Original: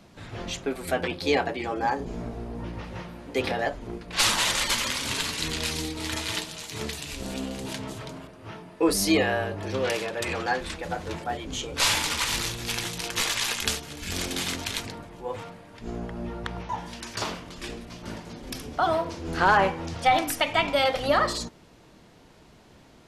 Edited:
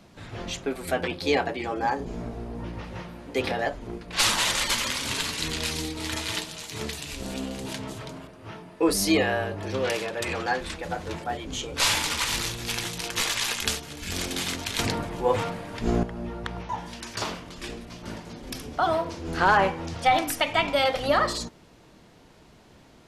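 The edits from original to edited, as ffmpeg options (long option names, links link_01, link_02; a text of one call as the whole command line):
ffmpeg -i in.wav -filter_complex "[0:a]asplit=3[link_01][link_02][link_03];[link_01]atrim=end=14.792[link_04];[link_02]atrim=start=14.788:end=16.032,asetpts=PTS-STARTPTS,volume=10.5dB[link_05];[link_03]atrim=start=16.028[link_06];[link_04][link_05]acrossfade=duration=0.004:curve1=hsin:curve2=hsin[link_07];[link_07][link_06]acrossfade=duration=0.004:curve1=hsin:curve2=hsin" out.wav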